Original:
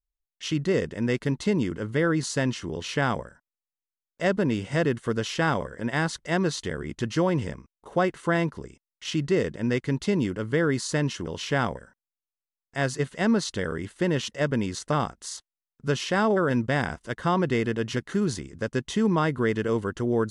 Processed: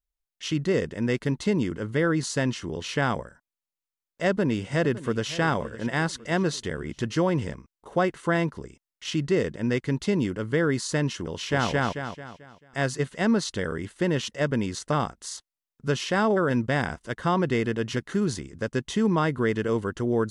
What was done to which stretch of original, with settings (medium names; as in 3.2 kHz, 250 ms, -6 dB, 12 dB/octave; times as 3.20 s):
4.28–5.30 s: echo throw 560 ms, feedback 50%, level -16 dB
11.29–11.70 s: echo throw 220 ms, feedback 40%, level -0.5 dB